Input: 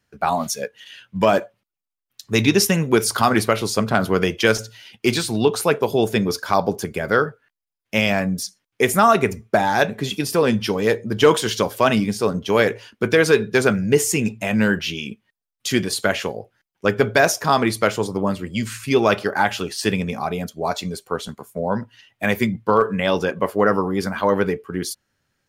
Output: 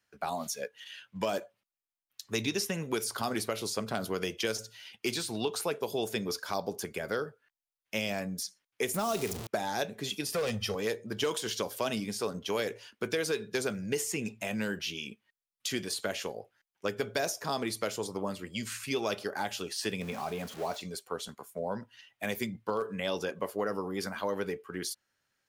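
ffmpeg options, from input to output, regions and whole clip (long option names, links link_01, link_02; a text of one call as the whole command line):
ffmpeg -i in.wav -filter_complex "[0:a]asettb=1/sr,asplit=3[link_01][link_02][link_03];[link_01]atrim=end=8.944[link_04];[link_02]atrim=start=8.94:end=9.47,asetpts=PTS-STARTPTS,afade=type=in:duration=0.004:curve=qsin,afade=type=out:start_time=0.526:duration=0.004:curve=qsin,aeval=exprs='val(0)+0.5*0.0944*sgn(val(0))':channel_layout=same,equalizer=frequency=1800:width_type=o:width=1.1:gain=-5[link_05];[link_03]atrim=start=9.466[link_06];[link_04][link_05]acrossfade=duration=0.004:curve1=hsin:curve2=qsin[link_07];[link_07][link_06]acrossfade=duration=0.004:curve1=qsin:curve2=hsin,asettb=1/sr,asplit=3[link_08][link_09][link_10];[link_08]atrim=end=10.344[link_11];[link_09]atrim=start=10.34:end=10.75,asetpts=PTS-STARTPTS,afade=type=in:duration=0.004:curve=qsin,afade=type=out:start_time=0.406:duration=0.004:curve=qsin,equalizer=frequency=89:width_type=o:width=0.35:gain=12,aecho=1:1:1.6:0.95,atrim=end_sample=18081,asoftclip=type=hard:threshold=-13dB[link_12];[link_10]atrim=start=10.746[link_13];[link_11][link_12]acrossfade=duration=0.004:curve1=hsin:curve2=qsin[link_14];[link_14][link_13]acrossfade=duration=0.004:curve1=qsin:curve2=hsin,asettb=1/sr,asplit=3[link_15][link_16][link_17];[link_15]atrim=end=20.014[link_18];[link_16]atrim=start=20.01:end=20.81,asetpts=PTS-STARTPTS,afade=type=in:duration=0.004:curve=qsin,afade=type=out:start_time=0.796:duration=0.004:curve=qsin,aeval=exprs='val(0)+0.5*0.0282*sgn(val(0))':channel_layout=same,acrossover=split=3000[link_19][link_20];[link_20]acompressor=threshold=-40dB:ratio=4:attack=1:release=60[link_21];[link_19][link_21]amix=inputs=2:normalize=0[link_22];[link_17]atrim=start=20.806[link_23];[link_18][link_22]acrossfade=duration=0.004:curve1=hsin:curve2=qsin[link_24];[link_24][link_23]acrossfade=duration=0.004:curve1=qsin:curve2=hsin,lowshelf=frequency=370:gain=-12,acrossover=split=610|3500[link_25][link_26][link_27];[link_25]acompressor=threshold=-25dB:ratio=4[link_28];[link_26]acompressor=threshold=-35dB:ratio=4[link_29];[link_27]acompressor=threshold=-30dB:ratio=4[link_30];[link_28][link_29][link_30]amix=inputs=3:normalize=0,volume=-5dB" out.wav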